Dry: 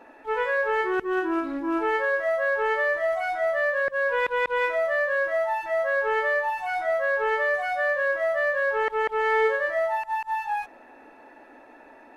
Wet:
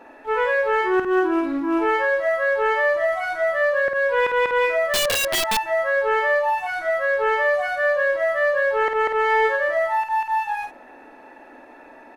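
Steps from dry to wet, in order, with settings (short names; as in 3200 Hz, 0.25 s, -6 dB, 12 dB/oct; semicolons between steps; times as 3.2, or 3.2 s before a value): early reflections 32 ms -17 dB, 51 ms -6 dB; 4.93–5.57 wrapped overs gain 19.5 dB; 6.67–7.19 bell 870 Hz -13 dB 0.21 oct; gain +3.5 dB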